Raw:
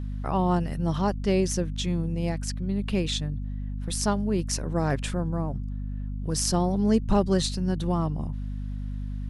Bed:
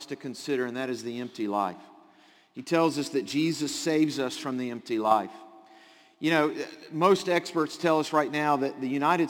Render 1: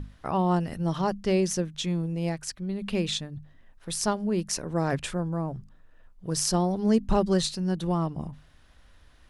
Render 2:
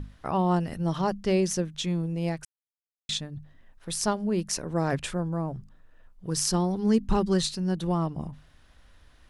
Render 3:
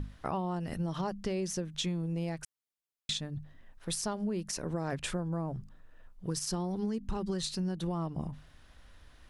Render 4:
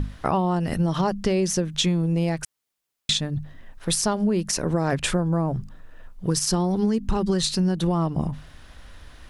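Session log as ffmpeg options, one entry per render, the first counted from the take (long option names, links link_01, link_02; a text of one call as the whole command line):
ffmpeg -i in.wav -af "bandreject=frequency=50:width_type=h:width=6,bandreject=frequency=100:width_type=h:width=6,bandreject=frequency=150:width_type=h:width=6,bandreject=frequency=200:width_type=h:width=6,bandreject=frequency=250:width_type=h:width=6" out.wav
ffmpeg -i in.wav -filter_complex "[0:a]asettb=1/sr,asplit=3[link_01][link_02][link_03];[link_01]atrim=end=6.274[link_04];[link_02]atrim=start=6.27:end=7.58,asetpts=PTS-STARTPTS,afade=type=in:duration=0.004:curve=qsin,afade=type=out:start_time=1.306:duration=0.004:curve=qsin,equalizer=frequency=630:width=4.7:gain=-10.5[link_05];[link_03]atrim=start=7.576[link_06];[link_04][link_05]acrossfade=duration=0.004:curve1=hsin:curve2=qsin[link_07];[link_07][link_06]acrossfade=duration=0.004:curve1=qsin:curve2=hsin,asplit=3[link_08][link_09][link_10];[link_08]atrim=end=2.45,asetpts=PTS-STARTPTS,afade=type=out:start_time=2.446:duration=0.004:curve=hsin[link_11];[link_09]atrim=start=2.45:end=3.09,asetpts=PTS-STARTPTS,volume=0[link_12];[link_10]atrim=start=3.09,asetpts=PTS-STARTPTS,afade=type=in:duration=0.004:curve=hsin[link_13];[link_11][link_12][link_13]concat=n=3:v=0:a=1" out.wav
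ffmpeg -i in.wav -af "alimiter=limit=-19.5dB:level=0:latency=1:release=157,acompressor=threshold=-30dB:ratio=6" out.wav
ffmpeg -i in.wav -af "volume=11.5dB" out.wav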